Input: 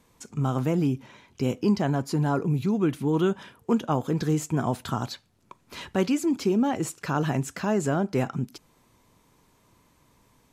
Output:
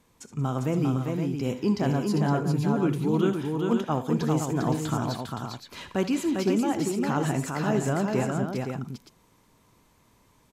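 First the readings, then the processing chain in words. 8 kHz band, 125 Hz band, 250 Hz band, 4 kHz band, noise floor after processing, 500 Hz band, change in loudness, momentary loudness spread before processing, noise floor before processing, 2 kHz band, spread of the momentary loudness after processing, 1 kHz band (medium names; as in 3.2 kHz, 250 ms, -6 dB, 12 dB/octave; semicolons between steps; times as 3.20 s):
0.0 dB, +0.5 dB, 0.0 dB, 0.0 dB, -63 dBFS, 0.0 dB, 0.0 dB, 9 LU, -64 dBFS, 0.0 dB, 9 LU, 0.0 dB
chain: multi-tap echo 65/77/179/400/516 ms -15.5/-15.5/-18.5/-4/-7 dB; trim -2 dB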